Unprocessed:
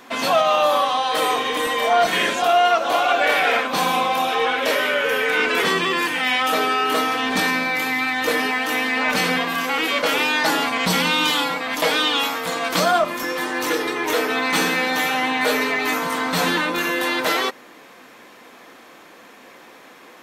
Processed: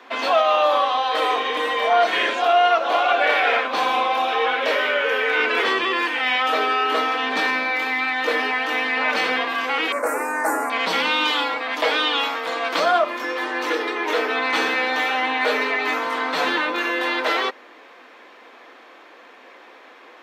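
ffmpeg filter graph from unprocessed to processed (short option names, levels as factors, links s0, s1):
-filter_complex "[0:a]asettb=1/sr,asplit=3[s0][s1][s2];[s0]atrim=end=9.924[s3];[s1]atrim=start=9.92:end=10.7,asetpts=PTS-STARTPTS,afade=t=in:d=0.004:c=qsin,afade=t=out:st=0.776:d=0.004:c=qsin,asuperstop=centerf=3300:order=4:qfactor=0.78,highshelf=f=6600:t=q:w=3:g=11.5[s4];[s2]atrim=start=10.696[s5];[s3][s4]acrossfade=d=0.004:c1=hsin:c2=qsin[s6];[s6][s5]acrossfade=d=0.004:c1=qsin:c2=hsin,highpass=f=210:w=0.5412,highpass=f=210:w=1.3066,acrossover=split=270 4600:gain=0.112 1 0.126[s7][s8][s9];[s7][s8][s9]amix=inputs=3:normalize=0"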